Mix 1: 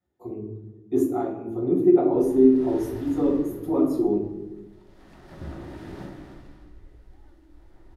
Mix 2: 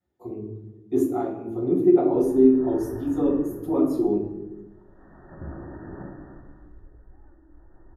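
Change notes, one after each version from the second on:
background: add brick-wall FIR low-pass 1900 Hz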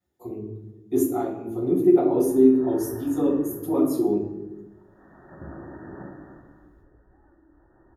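background: add HPF 130 Hz 6 dB/oct; master: remove LPF 2500 Hz 6 dB/oct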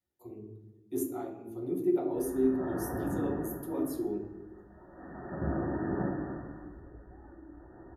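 speech: send -11.5 dB; background: send +8.0 dB

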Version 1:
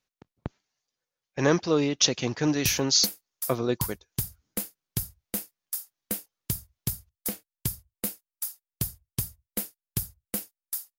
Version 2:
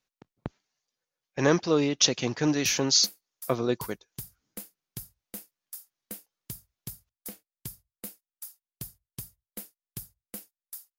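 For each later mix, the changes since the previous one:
background -9.5 dB; master: add bell 74 Hz -10.5 dB 0.58 oct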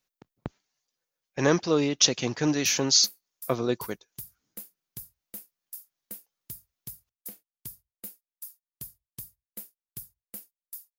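background -6.0 dB; master: add high shelf 11000 Hz +10.5 dB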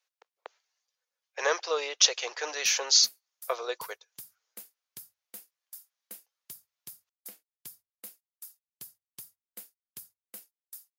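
speech: add Chebyshev high-pass 460 Hz, order 4; master: add weighting filter A

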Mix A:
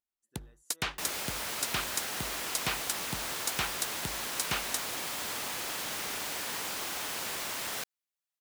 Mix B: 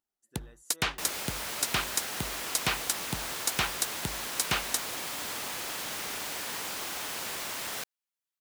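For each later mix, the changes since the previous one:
speech +8.5 dB; first sound +4.0 dB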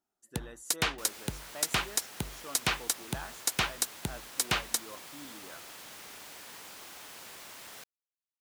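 speech +9.0 dB; second sound -11.5 dB

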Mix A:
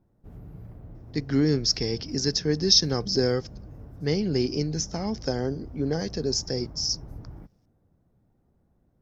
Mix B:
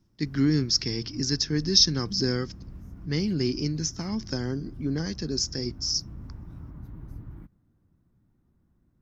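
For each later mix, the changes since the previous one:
speech: entry -0.95 s; master: add band shelf 590 Hz -9.5 dB 1.2 oct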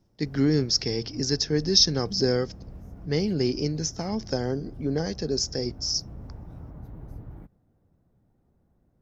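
master: add band shelf 590 Hz +9.5 dB 1.2 oct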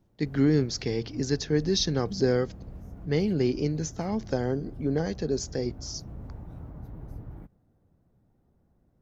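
speech: add bell 5300 Hz -14.5 dB 0.34 oct

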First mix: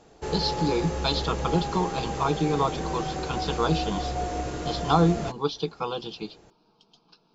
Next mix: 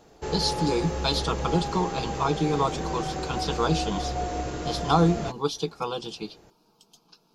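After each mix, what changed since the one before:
speech: remove inverse Chebyshev low-pass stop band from 8900 Hz, stop band 40 dB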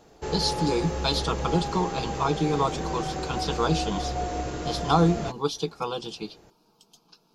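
none

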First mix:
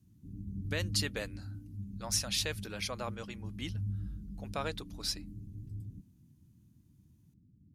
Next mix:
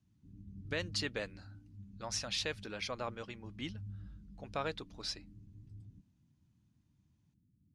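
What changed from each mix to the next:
background -9.5 dB; master: add air absorption 100 m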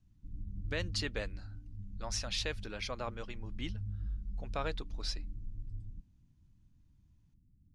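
background: remove HPF 120 Hz 12 dB/oct

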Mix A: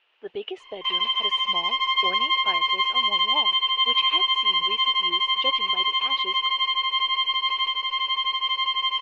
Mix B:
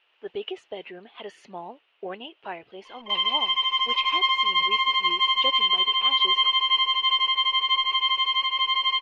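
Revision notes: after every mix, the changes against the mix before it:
background: entry +2.25 s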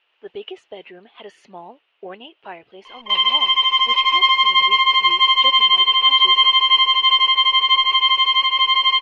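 background +7.5 dB

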